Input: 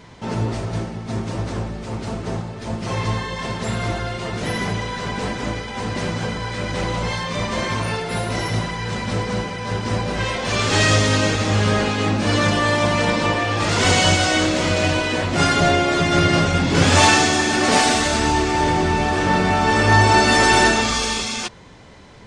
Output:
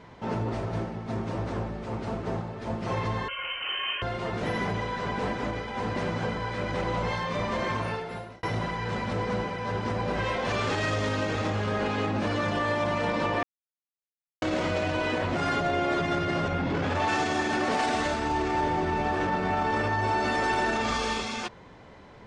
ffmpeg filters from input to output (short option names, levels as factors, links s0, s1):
-filter_complex "[0:a]asettb=1/sr,asplit=3[s0][s1][s2];[s0]atrim=end=3.284[s3];[s1]atrim=start=3.28:end=4.02,asetpts=PTS-STARTPTS,afade=t=in:d=0.004:c=qsin,afade=t=out:st=0.736:d=0.004:c=qsin,lowpass=f=2700:t=q:w=0.5098,lowpass=f=2700:t=q:w=0.6013,lowpass=f=2700:t=q:w=0.9,lowpass=f=2700:t=q:w=2.563,afreqshift=-3200[s4];[s2]atrim=start=4.016[s5];[s3][s4]acrossfade=d=0.004:c1=hsin:c2=qsin[s6];[s6][s5]acrossfade=d=0.004:c1=qsin:c2=hsin,asettb=1/sr,asplit=3[s7][s8][s9];[s7]atrim=end=16.484[s10];[s8]atrim=start=16.48:end=17.08,asetpts=PTS-STARTPTS,afade=t=in:d=0.004:c=qsin,afade=t=out:st=0.596:d=0.004:c=qsin,aemphasis=mode=reproduction:type=50fm[s11];[s9]atrim=start=17.076[s12];[s10][s11]acrossfade=d=0.004:c1=hsin:c2=qsin[s13];[s13][s12]acrossfade=d=0.004:c1=qsin:c2=hsin,asplit=4[s14][s15][s16][s17];[s14]atrim=end=8.43,asetpts=PTS-STARTPTS,afade=t=out:st=7.73:d=0.7[s18];[s15]atrim=start=8.43:end=13.43,asetpts=PTS-STARTPTS,afade=t=in:d=0.004:c=hsin,afade=t=out:st=4.996:d=0.004:c=hsin[s19];[s16]atrim=start=13.43:end=14.42,asetpts=PTS-STARTPTS,volume=0[s20];[s17]atrim=start=14.42,asetpts=PTS-STARTPTS,afade=t=in:d=0.004:c=hsin[s21];[s18][s19][s20][s21]concat=n=4:v=0:a=1,lowpass=f=1200:p=1,alimiter=limit=0.158:level=0:latency=1:release=44,lowshelf=f=340:g=-7.5"